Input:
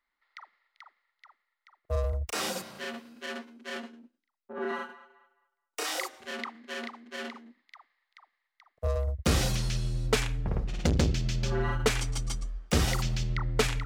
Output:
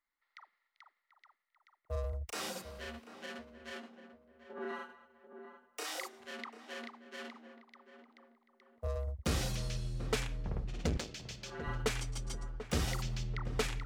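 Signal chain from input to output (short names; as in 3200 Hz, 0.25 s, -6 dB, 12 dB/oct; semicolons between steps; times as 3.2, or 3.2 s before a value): 10.97–11.67 HPF 840 Hz 6 dB/oct; tape echo 0.739 s, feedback 47%, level -9 dB, low-pass 1100 Hz; gain -8 dB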